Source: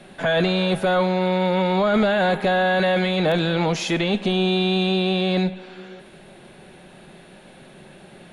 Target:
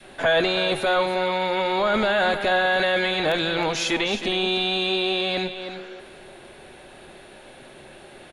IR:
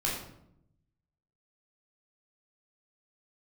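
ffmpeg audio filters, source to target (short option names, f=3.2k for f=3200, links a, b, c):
-filter_complex "[0:a]equalizer=f=180:w=2.8:g=-15,asplit=2[a][b];[b]aecho=0:1:314:0.299[c];[a][c]amix=inputs=2:normalize=0,adynamicequalizer=threshold=0.0178:dfrequency=510:dqfactor=0.83:tfrequency=510:tqfactor=0.83:attack=5:release=100:ratio=0.375:range=2.5:mode=cutabove:tftype=bell,volume=2dB"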